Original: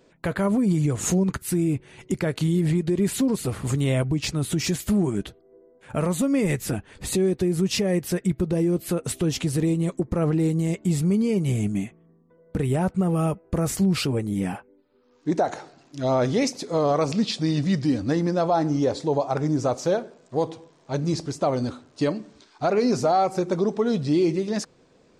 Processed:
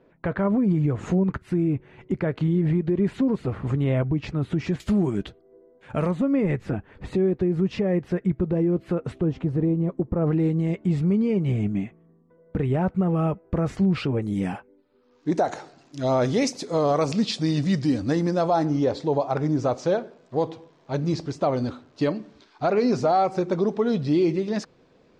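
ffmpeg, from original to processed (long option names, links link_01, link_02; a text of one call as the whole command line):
ffmpeg -i in.wav -af "asetnsamples=nb_out_samples=441:pad=0,asendcmd='4.8 lowpass f 4500;6.11 lowpass f 1800;9.18 lowpass f 1100;10.27 lowpass f 2500;14.22 lowpass f 5800;15.34 lowpass f 9600;18.65 lowpass f 4400',lowpass=1900" out.wav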